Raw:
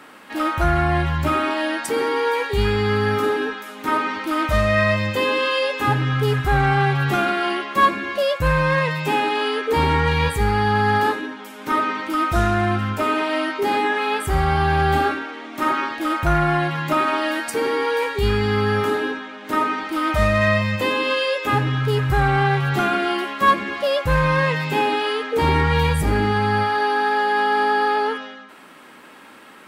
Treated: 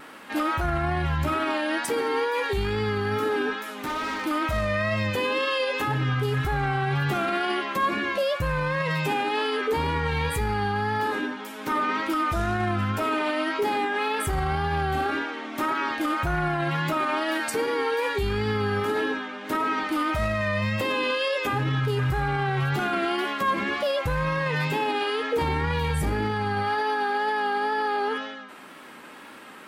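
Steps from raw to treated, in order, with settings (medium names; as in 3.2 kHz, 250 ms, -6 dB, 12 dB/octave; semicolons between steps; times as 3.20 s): peak limiter -17.5 dBFS, peak gain reduction 10 dB; wow and flutter 45 cents; 3.65–4.26 s: overload inside the chain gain 27 dB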